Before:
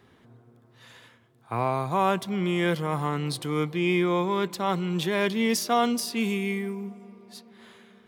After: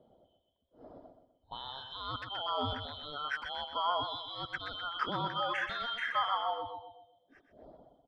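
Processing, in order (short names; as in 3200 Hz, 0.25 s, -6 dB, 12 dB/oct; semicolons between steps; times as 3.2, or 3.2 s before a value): four-band scrambler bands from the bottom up 2413; reverb removal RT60 1.8 s; limiter -20.5 dBFS, peak gain reduction 9 dB; feedback echo 0.126 s, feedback 40%, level -8 dB; envelope low-pass 590–1400 Hz up, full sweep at -30.5 dBFS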